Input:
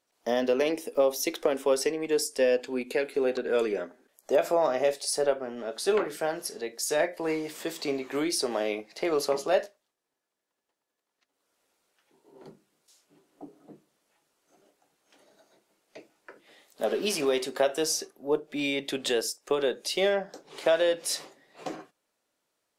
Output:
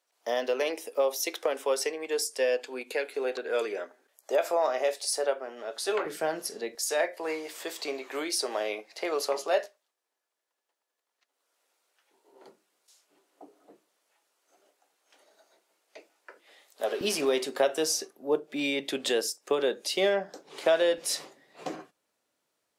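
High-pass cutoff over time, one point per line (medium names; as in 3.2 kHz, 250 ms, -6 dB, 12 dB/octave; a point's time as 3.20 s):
500 Hz
from 6.05 s 150 Hz
from 6.75 s 470 Hz
from 17.01 s 170 Hz
from 20.98 s 46 Hz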